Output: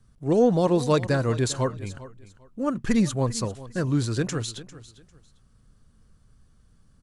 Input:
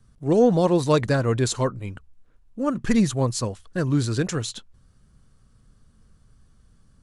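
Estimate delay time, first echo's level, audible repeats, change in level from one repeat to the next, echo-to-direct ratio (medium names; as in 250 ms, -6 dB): 399 ms, -17.0 dB, 2, -12.5 dB, -17.0 dB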